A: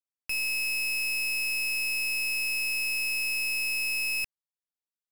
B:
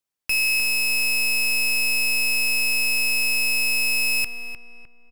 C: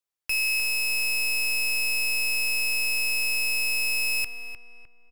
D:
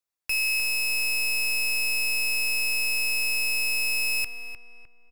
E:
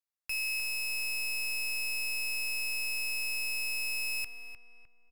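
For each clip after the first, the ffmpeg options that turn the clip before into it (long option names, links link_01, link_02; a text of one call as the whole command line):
ffmpeg -i in.wav -filter_complex "[0:a]asplit=2[link_01][link_02];[link_02]adelay=304,lowpass=frequency=1600:poles=1,volume=-6dB,asplit=2[link_03][link_04];[link_04]adelay=304,lowpass=frequency=1600:poles=1,volume=0.45,asplit=2[link_05][link_06];[link_06]adelay=304,lowpass=frequency=1600:poles=1,volume=0.45,asplit=2[link_07][link_08];[link_08]adelay=304,lowpass=frequency=1600:poles=1,volume=0.45,asplit=2[link_09][link_10];[link_10]adelay=304,lowpass=frequency=1600:poles=1,volume=0.45[link_11];[link_01][link_03][link_05][link_07][link_09][link_11]amix=inputs=6:normalize=0,volume=8.5dB" out.wav
ffmpeg -i in.wav -af "equalizer=frequency=210:width_type=o:width=0.53:gain=-12,volume=-4dB" out.wav
ffmpeg -i in.wav -af "bandreject=frequency=3100:width=13" out.wav
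ffmpeg -i in.wav -af "equalizer=frequency=370:width=2.3:gain=-5.5,volume=-8dB" out.wav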